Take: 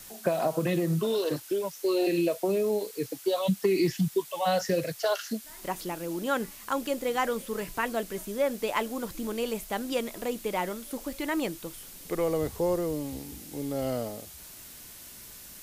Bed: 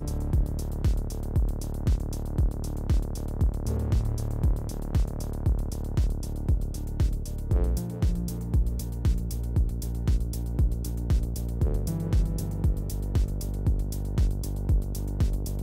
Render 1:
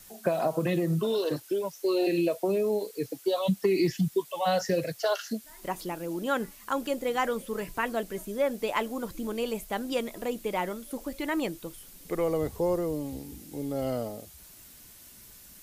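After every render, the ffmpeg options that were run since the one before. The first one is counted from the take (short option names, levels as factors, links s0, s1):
-af "afftdn=nr=6:nf=-47"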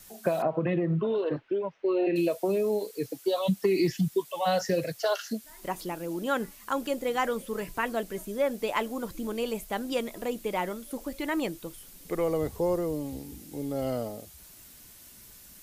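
-filter_complex "[0:a]asettb=1/sr,asplit=3[s0][s1][s2];[s0]atrim=end=0.424[s3];[s1]atrim=start=0.42:end=2.16,asetpts=PTS-STARTPTS,afade=t=in:d=0.004:c=qsin,afade=t=out:st=1.736:d=0.004:c=qsin,lowpass=f=2600:w=0.5412,lowpass=f=2600:w=1.3066[s4];[s2]atrim=start=2.156[s5];[s3][s4]acrossfade=d=0.004:c1=hsin:c2=qsin[s6];[s6][s5]acrossfade=d=0.004:c1=qsin:c2=hsin"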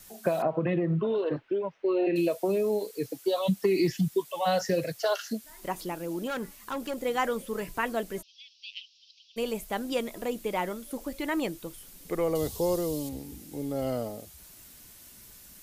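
-filter_complex "[0:a]asettb=1/sr,asplit=3[s0][s1][s2];[s0]atrim=end=6.274[s3];[s1]atrim=start=6.27:end=6.98,asetpts=PTS-STARTPTS,afade=t=in:d=0.004:c=qsin,afade=t=out:st=0.706:d=0.004:c=qsin,aeval=exprs='(tanh(25.1*val(0)+0.15)-tanh(0.15))/25.1':c=same[s4];[s2]atrim=start=6.976[s5];[s3][s4]acrossfade=d=0.004:c1=hsin:c2=qsin[s6];[s6][s5]acrossfade=d=0.004:c1=qsin:c2=hsin,asplit=3[s7][s8][s9];[s7]afade=t=out:st=8.21:d=0.02[s10];[s8]asuperpass=centerf=3900:order=12:qfactor=1.3,afade=t=in:st=8.21:d=0.02,afade=t=out:st=9.36:d=0.02[s11];[s9]afade=t=in:st=9.36:d=0.02[s12];[s10][s11][s12]amix=inputs=3:normalize=0,asettb=1/sr,asplit=3[s13][s14][s15];[s13]atrim=end=12.354[s16];[s14]atrim=start=12.35:end=13.09,asetpts=PTS-STARTPTS,afade=t=in:d=0.004:c=qsin,afade=t=out:st=0.736:d=0.004:c=qsin,highshelf=f=2700:t=q:w=1.5:g=8.5[s17];[s15]atrim=start=13.086[s18];[s16][s17]acrossfade=d=0.004:c1=hsin:c2=qsin[s19];[s19][s18]acrossfade=d=0.004:c1=qsin:c2=hsin"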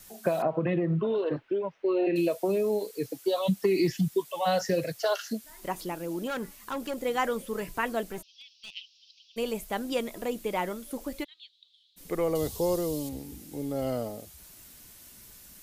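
-filter_complex "[0:a]asettb=1/sr,asplit=3[s0][s1][s2];[s0]atrim=end=8.104[s3];[s1]atrim=start=8.1:end=8.72,asetpts=PTS-STARTPTS,afade=t=in:d=0.004:c=qsin,afade=t=out:st=0.616:d=0.004:c=qsin,aeval=exprs='clip(val(0),-1,0.00841)':c=same[s4];[s2]atrim=start=8.716[s5];[s3][s4]acrossfade=d=0.004:c1=hsin:c2=qsin[s6];[s6][s5]acrossfade=d=0.004:c1=qsin:c2=hsin,asplit=3[s7][s8][s9];[s7]afade=t=out:st=11.23:d=0.02[s10];[s8]asuperpass=centerf=3700:order=4:qfactor=4.2,afade=t=in:st=11.23:d=0.02,afade=t=out:st=11.96:d=0.02[s11];[s9]afade=t=in:st=11.96:d=0.02[s12];[s10][s11][s12]amix=inputs=3:normalize=0"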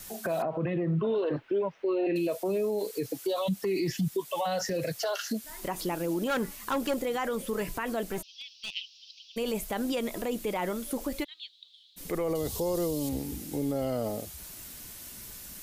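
-filter_complex "[0:a]asplit=2[s0][s1];[s1]acompressor=threshold=0.02:ratio=6,volume=1.12[s2];[s0][s2]amix=inputs=2:normalize=0,alimiter=limit=0.0794:level=0:latency=1:release=41"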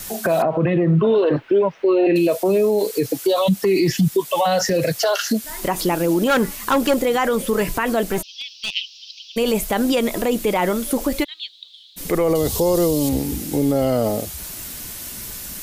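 -af "volume=3.98"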